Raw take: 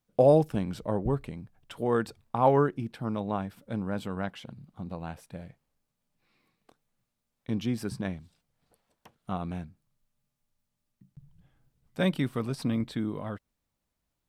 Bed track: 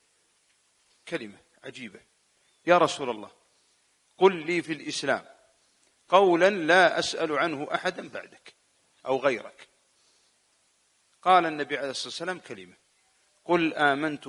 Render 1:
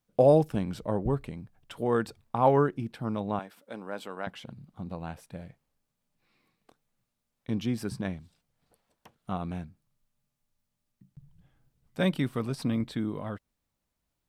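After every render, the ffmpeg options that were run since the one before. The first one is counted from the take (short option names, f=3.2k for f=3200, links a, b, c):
-filter_complex "[0:a]asettb=1/sr,asplit=3[a][b][c];[a]atrim=end=3.394[d];[b]atrim=start=3.39:end=4.27,asetpts=PTS-STARTPTS,afade=t=in:d=0.004:c=qsin,afade=t=out:st=0.876:d=0.004:c=qsin,highpass=400[e];[c]atrim=start=4.266[f];[d][e]acrossfade=d=0.004:c1=hsin:c2=qsin[g];[g][f]acrossfade=d=0.004:c1=qsin:c2=hsin"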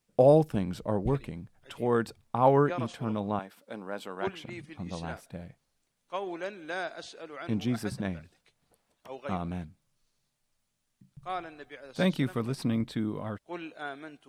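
-filter_complex "[1:a]volume=-16dB[a];[0:a][a]amix=inputs=2:normalize=0"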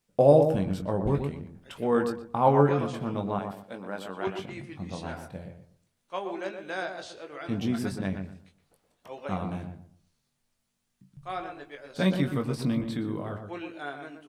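-filter_complex "[0:a]asplit=2[a][b];[b]adelay=21,volume=-7dB[c];[a][c]amix=inputs=2:normalize=0,asplit=2[d][e];[e]adelay=121,lowpass=f=1.2k:p=1,volume=-5.5dB,asplit=2[f][g];[g]adelay=121,lowpass=f=1.2k:p=1,volume=0.28,asplit=2[h][i];[i]adelay=121,lowpass=f=1.2k:p=1,volume=0.28,asplit=2[j][k];[k]adelay=121,lowpass=f=1.2k:p=1,volume=0.28[l];[f][h][j][l]amix=inputs=4:normalize=0[m];[d][m]amix=inputs=2:normalize=0"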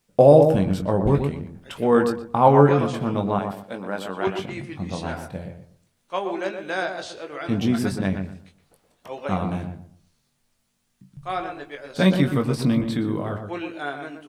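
-af "volume=7dB,alimiter=limit=-3dB:level=0:latency=1"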